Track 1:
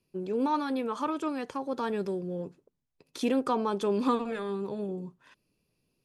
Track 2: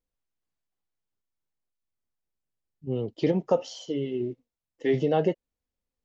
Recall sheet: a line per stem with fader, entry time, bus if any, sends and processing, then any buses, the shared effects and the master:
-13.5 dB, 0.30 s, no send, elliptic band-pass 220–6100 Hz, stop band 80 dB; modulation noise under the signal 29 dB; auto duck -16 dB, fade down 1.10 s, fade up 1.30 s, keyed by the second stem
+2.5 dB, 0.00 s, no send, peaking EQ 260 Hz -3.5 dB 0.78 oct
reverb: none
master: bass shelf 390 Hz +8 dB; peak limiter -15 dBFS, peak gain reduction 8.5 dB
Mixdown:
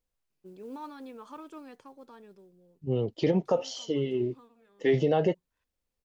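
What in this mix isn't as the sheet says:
stem 1: missing elliptic band-pass 220–6100 Hz, stop band 80 dB; master: missing bass shelf 390 Hz +8 dB

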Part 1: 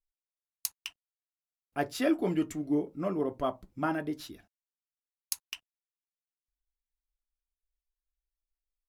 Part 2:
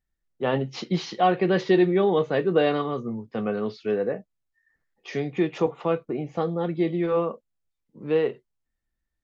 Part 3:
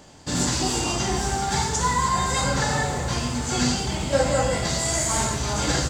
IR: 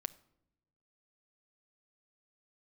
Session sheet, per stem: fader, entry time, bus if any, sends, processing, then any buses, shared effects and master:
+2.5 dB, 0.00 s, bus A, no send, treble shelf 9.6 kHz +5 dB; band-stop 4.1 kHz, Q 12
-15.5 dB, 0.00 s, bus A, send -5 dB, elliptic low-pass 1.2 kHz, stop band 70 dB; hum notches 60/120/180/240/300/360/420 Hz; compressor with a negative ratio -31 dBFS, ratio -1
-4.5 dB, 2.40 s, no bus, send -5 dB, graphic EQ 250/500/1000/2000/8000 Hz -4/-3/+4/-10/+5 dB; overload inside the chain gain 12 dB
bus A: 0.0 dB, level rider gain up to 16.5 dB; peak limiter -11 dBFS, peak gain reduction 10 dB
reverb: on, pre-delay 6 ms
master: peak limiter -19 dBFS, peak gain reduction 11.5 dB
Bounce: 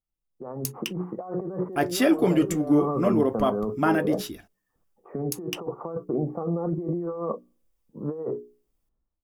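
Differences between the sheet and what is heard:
stem 1 +2.5 dB -> -7.5 dB; stem 3: muted; master: missing peak limiter -19 dBFS, peak gain reduction 11.5 dB

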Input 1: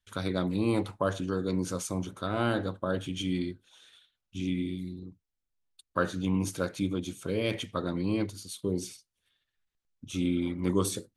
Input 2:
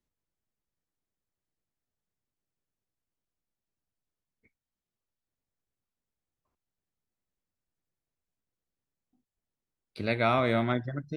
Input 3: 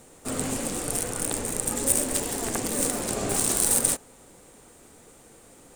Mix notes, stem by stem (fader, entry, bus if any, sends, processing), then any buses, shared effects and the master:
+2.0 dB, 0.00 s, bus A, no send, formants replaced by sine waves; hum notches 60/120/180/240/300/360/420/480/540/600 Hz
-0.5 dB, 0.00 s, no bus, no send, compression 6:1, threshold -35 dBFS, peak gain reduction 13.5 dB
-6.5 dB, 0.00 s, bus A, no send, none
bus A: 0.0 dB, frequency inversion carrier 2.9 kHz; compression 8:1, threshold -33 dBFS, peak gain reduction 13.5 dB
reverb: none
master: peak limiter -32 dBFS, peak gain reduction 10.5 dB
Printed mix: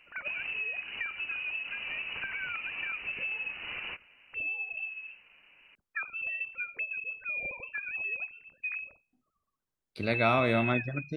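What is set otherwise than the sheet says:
stem 2: missing compression 6:1, threshold -35 dBFS, peak gain reduction 13.5 dB; master: missing peak limiter -32 dBFS, peak gain reduction 10.5 dB

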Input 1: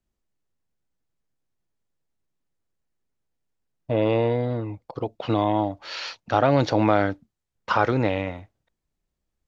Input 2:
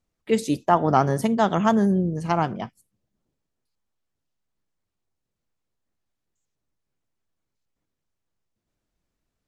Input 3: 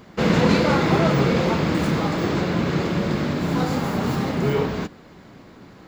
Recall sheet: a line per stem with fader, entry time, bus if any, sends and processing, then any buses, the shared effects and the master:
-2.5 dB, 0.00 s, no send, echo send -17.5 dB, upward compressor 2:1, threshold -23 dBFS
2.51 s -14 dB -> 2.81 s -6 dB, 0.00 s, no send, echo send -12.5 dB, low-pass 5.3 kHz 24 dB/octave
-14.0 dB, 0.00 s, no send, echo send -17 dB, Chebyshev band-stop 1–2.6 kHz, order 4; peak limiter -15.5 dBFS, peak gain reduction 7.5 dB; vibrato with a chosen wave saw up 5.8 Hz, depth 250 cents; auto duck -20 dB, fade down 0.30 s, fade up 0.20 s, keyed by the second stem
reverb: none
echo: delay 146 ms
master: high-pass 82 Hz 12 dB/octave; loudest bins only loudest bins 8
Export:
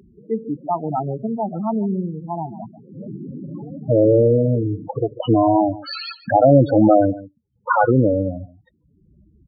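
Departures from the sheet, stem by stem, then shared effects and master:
stem 1 -2.5 dB -> +9.0 dB; stem 2 -14.0 dB -> -2.0 dB; stem 3 -14.0 dB -> -6.0 dB

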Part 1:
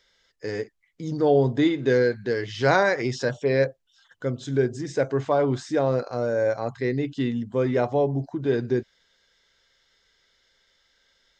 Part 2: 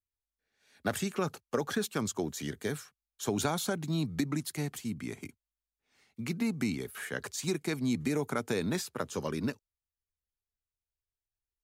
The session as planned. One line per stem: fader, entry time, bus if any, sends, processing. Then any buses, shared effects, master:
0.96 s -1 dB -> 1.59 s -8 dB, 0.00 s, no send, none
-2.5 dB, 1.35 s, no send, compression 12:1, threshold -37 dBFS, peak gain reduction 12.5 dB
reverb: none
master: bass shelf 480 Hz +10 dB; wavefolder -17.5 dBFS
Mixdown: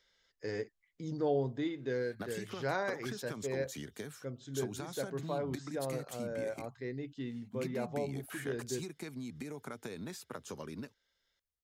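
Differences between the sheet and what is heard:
stem 1 -1.0 dB -> -8.0 dB; master: missing bass shelf 480 Hz +10 dB

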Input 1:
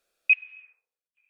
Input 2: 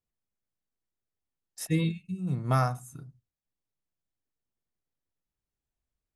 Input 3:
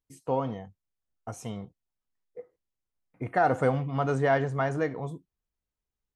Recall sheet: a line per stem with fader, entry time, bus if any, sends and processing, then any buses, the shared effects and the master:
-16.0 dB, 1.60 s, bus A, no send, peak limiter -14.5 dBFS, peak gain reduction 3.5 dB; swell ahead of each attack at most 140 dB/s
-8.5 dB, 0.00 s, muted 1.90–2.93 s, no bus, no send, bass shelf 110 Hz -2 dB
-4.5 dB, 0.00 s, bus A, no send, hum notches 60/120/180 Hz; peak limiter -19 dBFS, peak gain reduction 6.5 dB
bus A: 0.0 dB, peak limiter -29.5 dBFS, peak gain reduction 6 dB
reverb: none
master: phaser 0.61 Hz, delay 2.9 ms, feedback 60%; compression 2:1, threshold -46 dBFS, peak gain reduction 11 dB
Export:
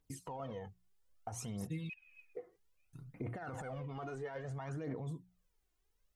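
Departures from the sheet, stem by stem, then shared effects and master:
stem 1: missing swell ahead of each attack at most 140 dB/s; stem 3 -4.5 dB -> +5.0 dB

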